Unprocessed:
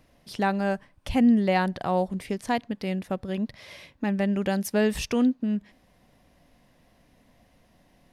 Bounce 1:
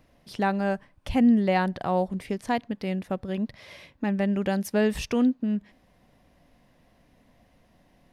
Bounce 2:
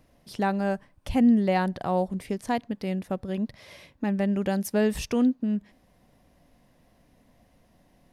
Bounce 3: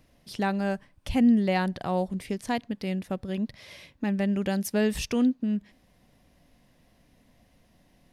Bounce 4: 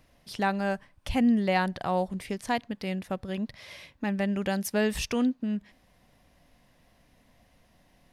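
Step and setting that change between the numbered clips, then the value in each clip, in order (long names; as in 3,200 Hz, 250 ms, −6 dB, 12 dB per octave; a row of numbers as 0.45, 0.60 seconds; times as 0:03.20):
parametric band, centre frequency: 10,000, 2,800, 930, 310 Hertz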